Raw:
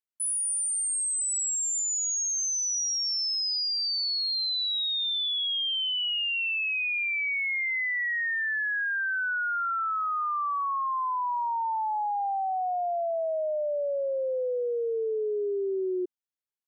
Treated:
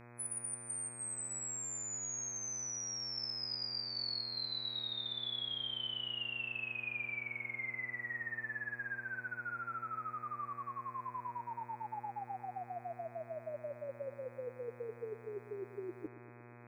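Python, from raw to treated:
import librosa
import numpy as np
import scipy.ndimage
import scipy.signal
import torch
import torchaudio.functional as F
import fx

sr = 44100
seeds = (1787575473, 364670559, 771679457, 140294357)

y = fx.spec_gate(x, sr, threshold_db=-10, keep='weak')
y = fx.echo_bbd(y, sr, ms=118, stages=4096, feedback_pct=71, wet_db=-15.5)
y = fx.dmg_buzz(y, sr, base_hz=120.0, harmonics=21, level_db=-67.0, tilt_db=-4, odd_only=False)
y = F.gain(torch.from_numpy(y), 11.5).numpy()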